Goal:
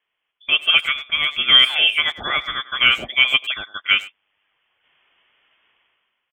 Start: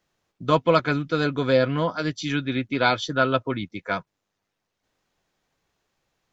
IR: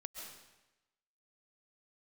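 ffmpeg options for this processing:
-filter_complex "[0:a]highpass=520,dynaudnorm=f=120:g=9:m=15dB,lowpass=f=3.1k:t=q:w=0.5098,lowpass=f=3.1k:t=q:w=0.6013,lowpass=f=3.1k:t=q:w=0.9,lowpass=f=3.1k:t=q:w=2.563,afreqshift=-3700,asplit=2[a][b];[b]adelay=100,highpass=300,lowpass=3.4k,asoftclip=type=hard:threshold=-15.5dB,volume=-16dB[c];[a][c]amix=inputs=2:normalize=0,volume=1dB"

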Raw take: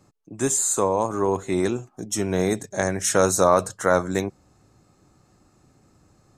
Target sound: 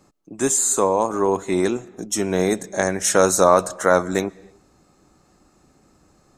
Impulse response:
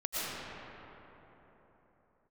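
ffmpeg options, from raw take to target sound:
-filter_complex "[0:a]equalizer=f=110:w=2.1:g=-11,asplit=2[a][b];[1:a]atrim=start_sample=2205,afade=t=out:st=0.37:d=0.01,atrim=end_sample=16758,lowpass=8.2k[c];[b][c]afir=irnorm=-1:irlink=0,volume=-28dB[d];[a][d]amix=inputs=2:normalize=0,volume=3dB"

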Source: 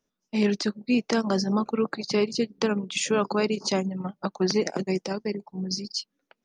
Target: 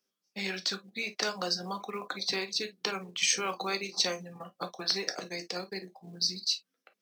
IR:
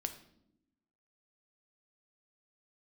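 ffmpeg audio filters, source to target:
-filter_complex "[0:a]acrossover=split=610[a][b];[a]acompressor=threshold=-33dB:ratio=10[c];[c][b]amix=inputs=2:normalize=0,asetrate=40517,aresample=44100,highpass=f=430:p=1,equalizer=f=910:t=o:w=0.23:g=-7[d];[1:a]atrim=start_sample=2205,afade=t=out:st=0.15:d=0.01,atrim=end_sample=7056,asetrate=74970,aresample=44100[e];[d][e]afir=irnorm=-1:irlink=0,asplit=2[f][g];[g]acrusher=bits=5:mode=log:mix=0:aa=0.000001,volume=-9dB[h];[f][h]amix=inputs=2:normalize=0,highshelf=f=3.1k:g=7"

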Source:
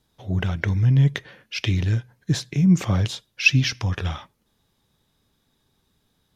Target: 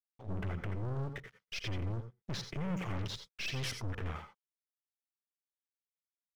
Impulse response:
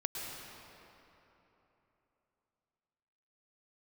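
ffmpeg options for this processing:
-filter_complex "[0:a]aeval=exprs='(tanh(50.1*val(0)+0.8)-tanh(0.8))/50.1':c=same,afwtdn=0.00501,aeval=exprs='sgn(val(0))*max(abs(val(0))-0.00106,0)':c=same[a];[1:a]atrim=start_sample=2205,afade=t=out:st=0.17:d=0.01,atrim=end_sample=7938,asetrate=57330,aresample=44100[b];[a][b]afir=irnorm=-1:irlink=0,volume=2dB"

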